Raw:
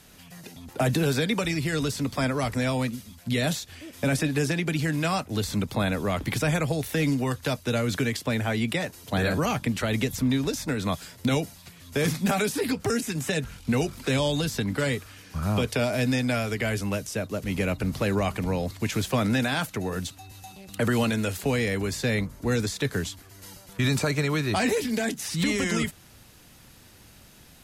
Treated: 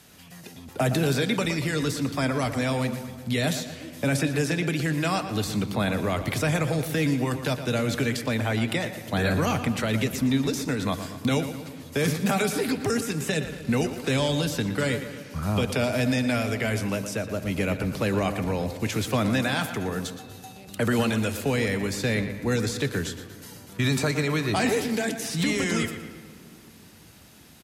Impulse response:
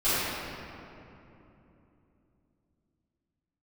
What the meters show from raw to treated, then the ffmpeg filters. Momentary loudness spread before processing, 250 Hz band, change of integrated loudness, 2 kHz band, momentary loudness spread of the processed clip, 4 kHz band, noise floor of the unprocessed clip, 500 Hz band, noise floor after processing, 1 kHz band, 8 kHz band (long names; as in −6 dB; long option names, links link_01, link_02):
8 LU, +1.0 dB, +0.5 dB, +0.5 dB, 7 LU, +0.5 dB, −52 dBFS, +1.0 dB, −48 dBFS, +1.0 dB, +0.5 dB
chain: -filter_complex "[0:a]highpass=67,asplit=2[link_01][link_02];[link_02]adelay=117,lowpass=frequency=4500:poles=1,volume=-10.5dB,asplit=2[link_03][link_04];[link_04]adelay=117,lowpass=frequency=4500:poles=1,volume=0.53,asplit=2[link_05][link_06];[link_06]adelay=117,lowpass=frequency=4500:poles=1,volume=0.53,asplit=2[link_07][link_08];[link_08]adelay=117,lowpass=frequency=4500:poles=1,volume=0.53,asplit=2[link_09][link_10];[link_10]adelay=117,lowpass=frequency=4500:poles=1,volume=0.53,asplit=2[link_11][link_12];[link_12]adelay=117,lowpass=frequency=4500:poles=1,volume=0.53[link_13];[link_01][link_03][link_05][link_07][link_09][link_11][link_13]amix=inputs=7:normalize=0,asplit=2[link_14][link_15];[1:a]atrim=start_sample=2205[link_16];[link_15][link_16]afir=irnorm=-1:irlink=0,volume=-30.5dB[link_17];[link_14][link_17]amix=inputs=2:normalize=0"